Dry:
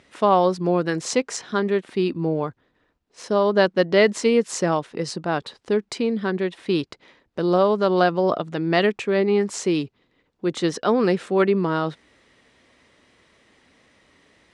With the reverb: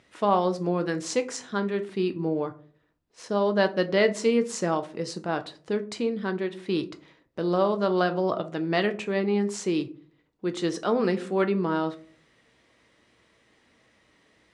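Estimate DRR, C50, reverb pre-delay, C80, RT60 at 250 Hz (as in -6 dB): 8.0 dB, 16.0 dB, 6 ms, 22.0 dB, 0.55 s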